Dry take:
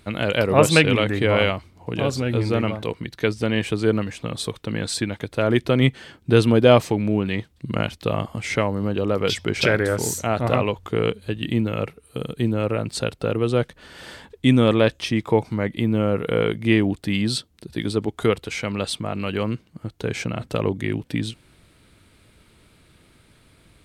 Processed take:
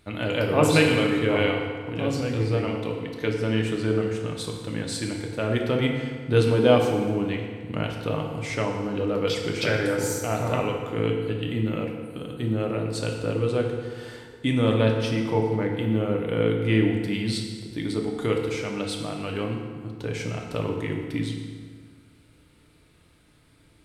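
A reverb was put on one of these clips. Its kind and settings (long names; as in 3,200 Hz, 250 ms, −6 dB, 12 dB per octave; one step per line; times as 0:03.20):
feedback delay network reverb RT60 1.8 s, low-frequency decay 1.05×, high-frequency decay 0.7×, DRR 0.5 dB
level −7 dB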